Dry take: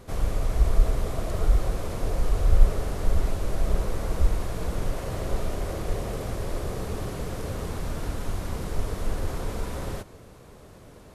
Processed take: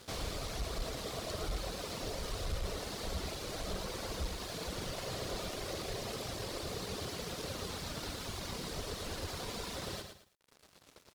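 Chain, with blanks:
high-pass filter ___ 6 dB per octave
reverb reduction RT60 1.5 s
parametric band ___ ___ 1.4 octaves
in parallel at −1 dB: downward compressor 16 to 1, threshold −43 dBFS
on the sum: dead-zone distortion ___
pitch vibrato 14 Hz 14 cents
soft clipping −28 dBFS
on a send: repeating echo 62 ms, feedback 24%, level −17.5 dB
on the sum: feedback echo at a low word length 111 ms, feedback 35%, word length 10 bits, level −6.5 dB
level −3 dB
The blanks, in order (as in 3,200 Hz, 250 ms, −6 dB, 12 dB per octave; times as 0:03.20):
150 Hz, 4,300 Hz, +13 dB, −43.5 dBFS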